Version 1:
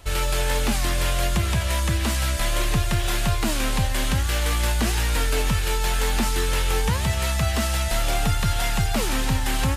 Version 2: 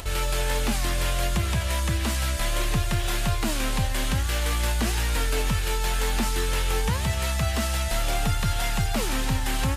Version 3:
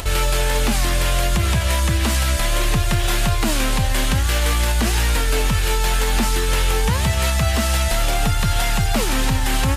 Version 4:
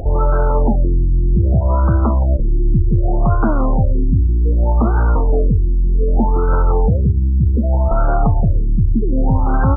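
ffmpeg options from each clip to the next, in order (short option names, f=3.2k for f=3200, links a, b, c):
-af "acompressor=mode=upward:threshold=-26dB:ratio=2.5,volume=-2.5dB"
-af "alimiter=limit=-17.5dB:level=0:latency=1:release=85,volume=8dB"
-af "afftfilt=real='re*lt(b*sr/1024,350*pow(1600/350,0.5+0.5*sin(2*PI*0.65*pts/sr)))':imag='im*lt(b*sr/1024,350*pow(1600/350,0.5+0.5*sin(2*PI*0.65*pts/sr)))':win_size=1024:overlap=0.75,volume=5.5dB"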